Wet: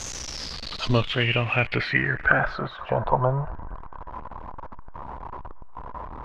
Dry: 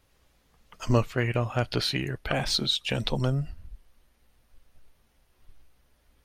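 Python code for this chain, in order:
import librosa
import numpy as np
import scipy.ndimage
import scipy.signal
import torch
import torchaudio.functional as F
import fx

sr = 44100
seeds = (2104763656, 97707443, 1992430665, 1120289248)

p1 = x + 0.5 * 10.0 ** (-32.0 / 20.0) * np.sign(x)
p2 = fx.filter_sweep_lowpass(p1, sr, from_hz=6500.0, to_hz=1000.0, start_s=0.07, end_s=2.93, q=7.5)
p3 = fx.graphic_eq_15(p2, sr, hz=(250, 630, 10000), db=(-8, 8, -12), at=(2.4, 3.52))
y = p3 + fx.echo_banded(p3, sr, ms=235, feedback_pct=72, hz=1300.0, wet_db=-23, dry=0)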